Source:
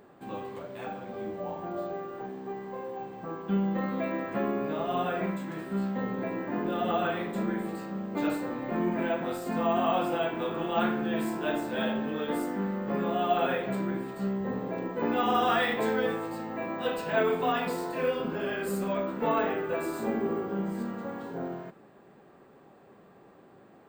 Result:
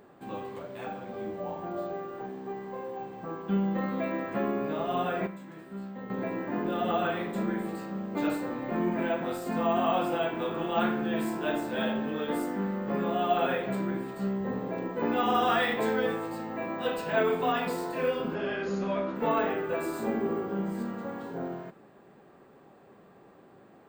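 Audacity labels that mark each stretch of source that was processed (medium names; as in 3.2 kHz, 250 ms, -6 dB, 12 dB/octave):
5.270000	6.100000	gain -9 dB
18.340000	19.160000	brick-wall FIR low-pass 7 kHz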